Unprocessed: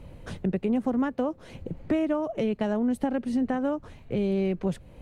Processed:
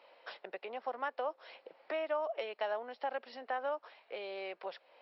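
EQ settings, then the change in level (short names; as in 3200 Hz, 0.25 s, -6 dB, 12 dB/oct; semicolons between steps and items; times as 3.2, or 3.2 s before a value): HPF 610 Hz 24 dB/oct; brick-wall FIR low-pass 5600 Hz; -2.0 dB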